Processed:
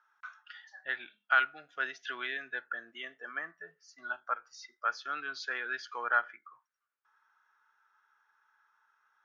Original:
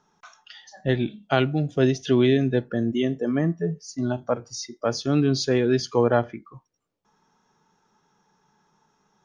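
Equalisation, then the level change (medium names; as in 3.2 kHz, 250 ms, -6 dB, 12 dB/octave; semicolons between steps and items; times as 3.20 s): ladder band-pass 1.6 kHz, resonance 65%; +6.5 dB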